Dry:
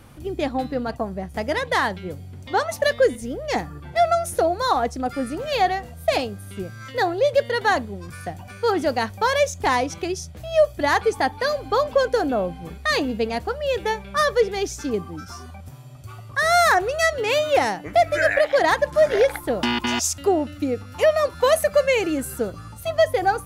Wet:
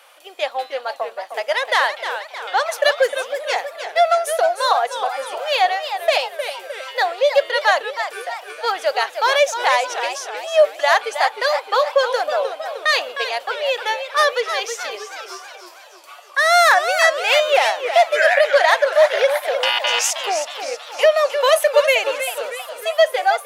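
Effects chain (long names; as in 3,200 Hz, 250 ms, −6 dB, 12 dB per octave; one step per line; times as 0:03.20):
Chebyshev high-pass filter 550 Hz, order 4
parametric band 3,000 Hz +6 dB 0.83 octaves
feedback echo with a swinging delay time 313 ms, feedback 52%, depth 183 cents, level −9 dB
level +3.5 dB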